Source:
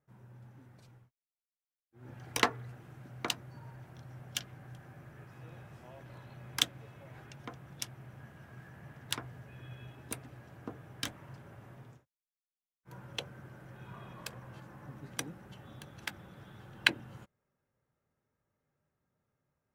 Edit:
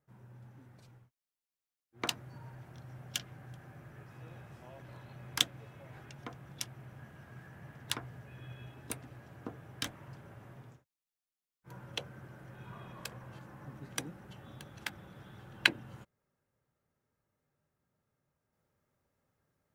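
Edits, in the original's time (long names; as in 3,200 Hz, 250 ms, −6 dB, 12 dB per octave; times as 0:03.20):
0:02.02–0:03.23: remove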